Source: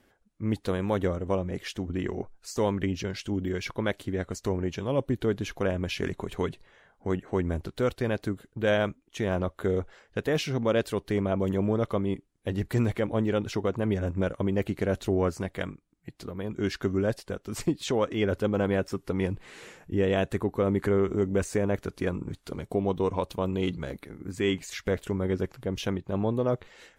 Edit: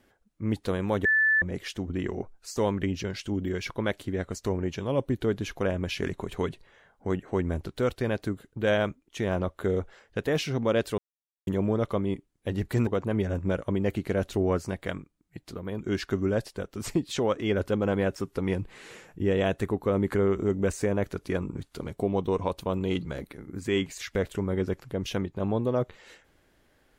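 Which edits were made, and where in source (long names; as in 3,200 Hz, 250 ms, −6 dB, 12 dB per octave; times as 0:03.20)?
0:01.05–0:01.42: beep over 1,750 Hz −19 dBFS
0:10.98–0:11.47: silence
0:12.87–0:13.59: remove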